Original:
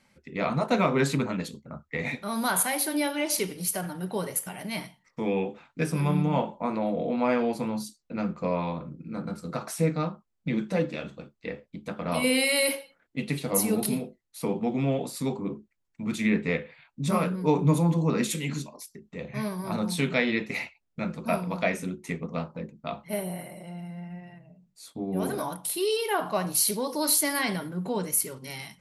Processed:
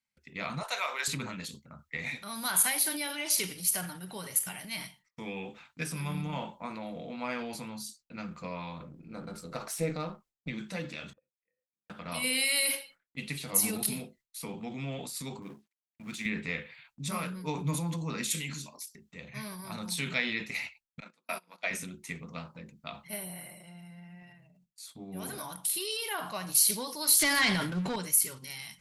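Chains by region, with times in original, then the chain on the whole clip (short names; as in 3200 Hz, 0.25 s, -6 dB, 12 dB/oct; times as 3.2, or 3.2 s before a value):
0.63–1.08 HPF 560 Hz 24 dB/oct + high shelf 5300 Hz +5.5 dB
8.83–10.5 half-wave gain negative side -3 dB + bell 470 Hz +10 dB 1.4 oct
11.13–11.9 auto swell 0.22 s + vocal tract filter e + compressor 3:1, threshold -57 dBFS
15.42–16.26 G.711 law mismatch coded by A + HPF 130 Hz + high shelf 11000 Hz -9.5 dB
21–21.71 gate -29 dBFS, range -23 dB + Bessel high-pass 380 Hz, order 4
27.19–27.96 sample leveller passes 3 + air absorption 68 m
whole clip: gate with hold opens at -48 dBFS; passive tone stack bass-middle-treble 5-5-5; transient shaper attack +2 dB, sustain +6 dB; gain +5.5 dB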